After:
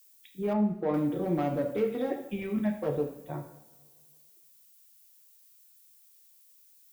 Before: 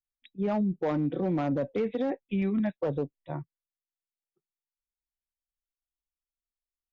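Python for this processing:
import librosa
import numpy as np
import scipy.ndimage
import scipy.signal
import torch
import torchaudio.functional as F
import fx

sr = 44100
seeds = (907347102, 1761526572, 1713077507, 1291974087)

y = fx.rev_double_slope(x, sr, seeds[0], early_s=0.6, late_s=2.0, knee_db=-18, drr_db=2.0)
y = fx.dmg_noise_colour(y, sr, seeds[1], colour='violet', level_db=-57.0)
y = fx.lowpass(y, sr, hz=1500.0, slope=6, at=(0.53, 0.94))
y = y * 10.0 ** (-2.5 / 20.0)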